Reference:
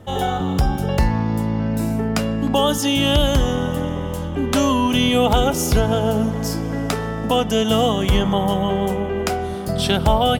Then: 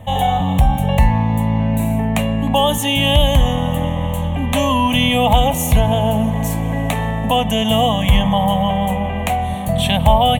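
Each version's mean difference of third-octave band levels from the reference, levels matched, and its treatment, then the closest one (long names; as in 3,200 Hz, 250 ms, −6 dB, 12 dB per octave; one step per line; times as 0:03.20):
4.0 dB: in parallel at −2 dB: brickwall limiter −17.5 dBFS, peak gain reduction 11.5 dB
on the sum: phaser with its sweep stopped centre 1,400 Hz, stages 6
level +3.5 dB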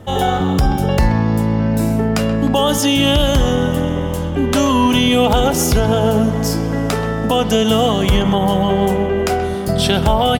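1.0 dB: brickwall limiter −10 dBFS, peak gain reduction 4 dB
far-end echo of a speakerphone 130 ms, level −11 dB
level +5 dB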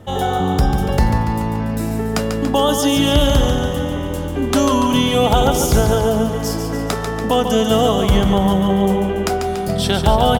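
3.0 dB: on a send: repeating echo 143 ms, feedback 57%, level −7 dB
on the sum: dynamic equaliser 2,600 Hz, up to −5 dB, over −38 dBFS, Q 2.6
level +2 dB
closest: second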